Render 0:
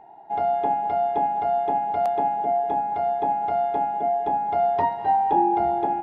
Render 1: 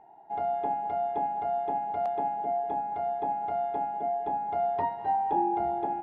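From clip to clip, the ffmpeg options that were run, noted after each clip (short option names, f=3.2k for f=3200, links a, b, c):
-af "aemphasis=mode=reproduction:type=50fm,volume=-7dB"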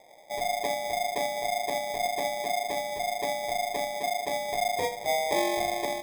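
-af "acrusher=samples=31:mix=1:aa=0.000001"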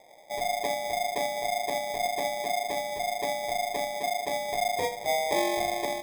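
-af anull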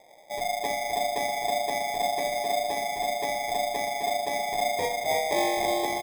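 -af "aecho=1:1:321|642|963|1284|1605:0.631|0.259|0.106|0.0435|0.0178"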